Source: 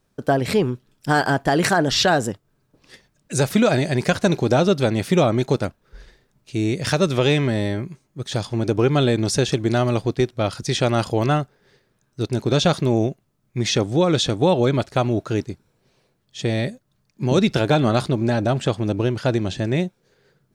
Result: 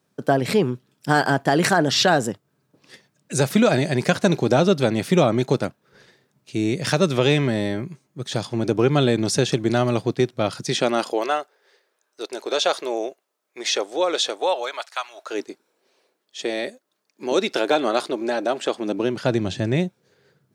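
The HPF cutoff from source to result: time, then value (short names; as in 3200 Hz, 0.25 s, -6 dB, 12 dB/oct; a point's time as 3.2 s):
HPF 24 dB/oct
10.58 s 120 Hz
11.31 s 430 Hz
14.29 s 430 Hz
15.1 s 1100 Hz
15.41 s 310 Hz
18.69 s 310 Hz
19.59 s 84 Hz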